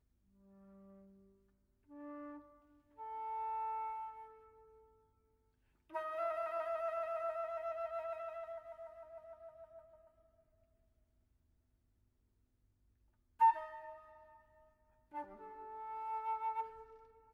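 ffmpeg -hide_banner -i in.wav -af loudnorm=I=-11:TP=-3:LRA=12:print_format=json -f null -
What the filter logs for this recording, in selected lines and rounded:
"input_i" : "-41.4",
"input_tp" : "-20.9",
"input_lra" : "10.8",
"input_thresh" : "-53.3",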